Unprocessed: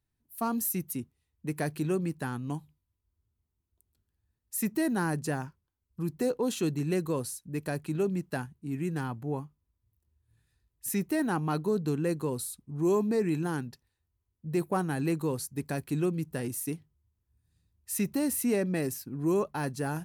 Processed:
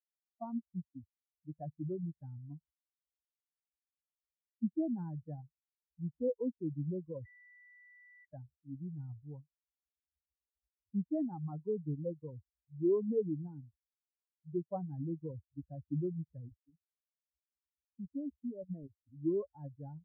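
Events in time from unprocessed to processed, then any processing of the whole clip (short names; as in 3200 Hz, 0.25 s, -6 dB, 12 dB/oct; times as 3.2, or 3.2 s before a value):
7.25–8.25 bleep 1970 Hz -16 dBFS
16.49–18.97 level quantiser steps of 10 dB
whole clip: per-bin expansion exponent 3; inverse Chebyshev low-pass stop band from 3000 Hz, stop band 70 dB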